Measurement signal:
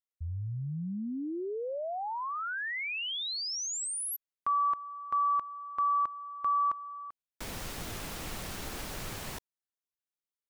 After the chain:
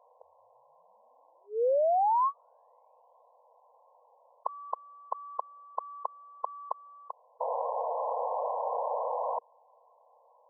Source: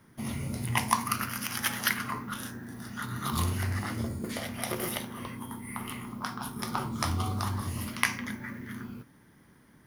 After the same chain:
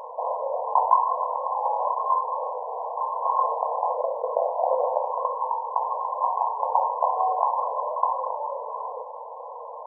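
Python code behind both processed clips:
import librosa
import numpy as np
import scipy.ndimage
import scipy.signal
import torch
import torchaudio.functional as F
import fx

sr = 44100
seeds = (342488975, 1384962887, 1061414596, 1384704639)

p1 = 10.0 ** (-18.5 / 20.0) * (np.abs((x / 10.0 ** (-18.5 / 20.0) + 3.0) % 4.0 - 2.0) - 1.0)
p2 = x + (p1 * librosa.db_to_amplitude(-7.0))
p3 = fx.brickwall_bandpass(p2, sr, low_hz=460.0, high_hz=1100.0)
p4 = fx.env_flatten(p3, sr, amount_pct=50)
y = p4 * librosa.db_to_amplitude(7.0)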